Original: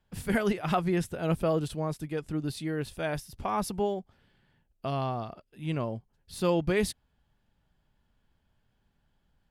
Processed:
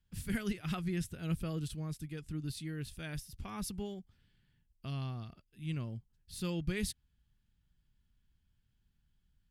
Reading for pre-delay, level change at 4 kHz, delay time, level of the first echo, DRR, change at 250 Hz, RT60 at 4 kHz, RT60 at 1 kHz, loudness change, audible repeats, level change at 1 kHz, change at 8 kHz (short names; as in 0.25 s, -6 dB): none, -5.0 dB, none, none, none, -7.5 dB, none, none, -9.0 dB, none, -17.0 dB, -3.5 dB